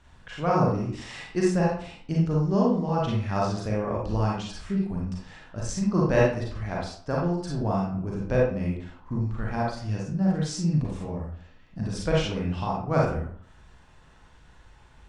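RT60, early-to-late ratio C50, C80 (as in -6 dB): 0.55 s, 0.0 dB, 6.0 dB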